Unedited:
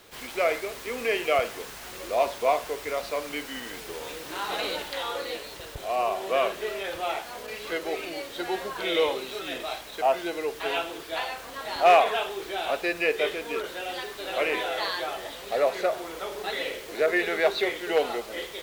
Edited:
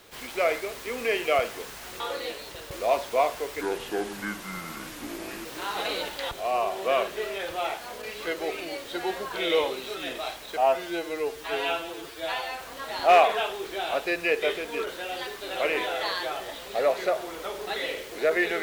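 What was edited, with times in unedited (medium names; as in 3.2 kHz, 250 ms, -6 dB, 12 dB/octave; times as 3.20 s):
2.90–4.19 s: speed 70%
5.05–5.76 s: move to 2.00 s
10.02–11.38 s: stretch 1.5×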